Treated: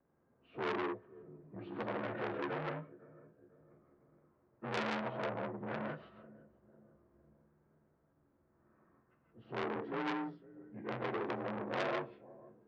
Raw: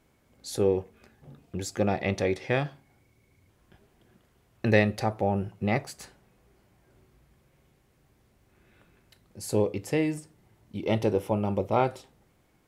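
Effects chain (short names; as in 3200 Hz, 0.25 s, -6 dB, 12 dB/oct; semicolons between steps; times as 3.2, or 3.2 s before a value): inharmonic rescaling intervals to 85%; Bessel low-pass 1800 Hz, order 4; low shelf 160 Hz -9.5 dB; low-pass opened by the level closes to 1400 Hz, open at -22.5 dBFS; darkening echo 0.5 s, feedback 51%, low-pass 1100 Hz, level -24 dB; non-linear reverb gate 0.19 s rising, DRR 0 dB; core saturation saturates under 2900 Hz; gain -6 dB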